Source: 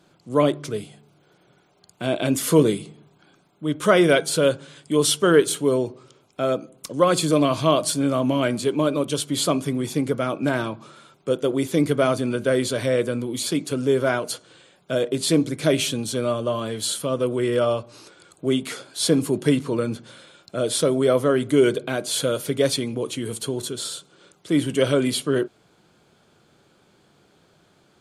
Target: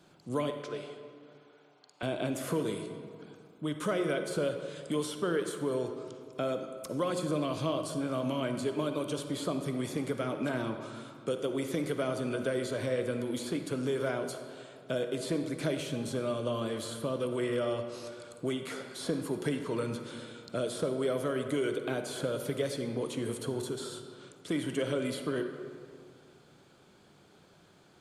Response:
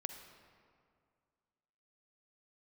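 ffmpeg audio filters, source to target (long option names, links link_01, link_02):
-filter_complex "[0:a]acrossover=split=690|1700[link_01][link_02][link_03];[link_01]acompressor=threshold=-30dB:ratio=4[link_04];[link_02]acompressor=threshold=-39dB:ratio=4[link_05];[link_03]acompressor=threshold=-43dB:ratio=4[link_06];[link_04][link_05][link_06]amix=inputs=3:normalize=0,asettb=1/sr,asplit=3[link_07][link_08][link_09];[link_07]atrim=end=0.504[link_10];[link_08]atrim=start=0.5:end=2.03,asetpts=PTS-STARTPTS,afade=type=in:duration=0.004:curve=qsin,afade=type=out:start_time=1.526:duration=0.004:curve=qsin,highpass=490,lowpass=4900[link_11];[link_09]atrim=start=2.026[link_12];[link_10][link_11]acrossfade=duration=0.004:curve1=hsin:curve2=qsin[link_13];[link_13][link_12]acrossfade=duration=0.004:curve1=qsin:curve2=hsin[link_14];[1:a]atrim=start_sample=2205[link_15];[link_14][link_15]afir=irnorm=-1:irlink=0"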